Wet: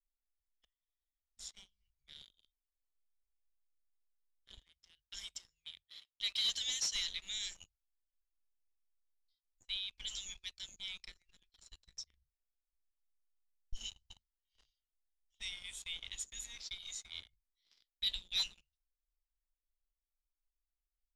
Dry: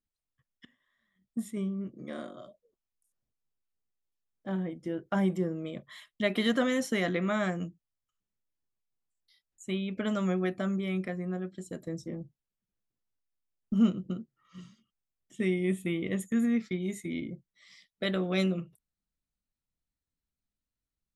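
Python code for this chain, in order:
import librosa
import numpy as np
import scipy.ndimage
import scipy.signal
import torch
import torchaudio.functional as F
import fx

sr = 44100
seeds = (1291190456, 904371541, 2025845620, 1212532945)

y = fx.highpass(x, sr, hz=80.0, slope=6, at=(4.57, 6.95))
y = fx.env_lowpass(y, sr, base_hz=1900.0, full_db=-24.5)
y = scipy.signal.sosfilt(scipy.signal.cheby2(4, 70, [170.0, 1200.0], 'bandstop', fs=sr, output='sos'), y)
y = fx.peak_eq(y, sr, hz=9700.0, db=-12.5, octaves=0.7)
y = fx.leveller(y, sr, passes=3)
y = fx.air_absorb(y, sr, metres=75.0)
y = y * librosa.db_to_amplitude(10.0)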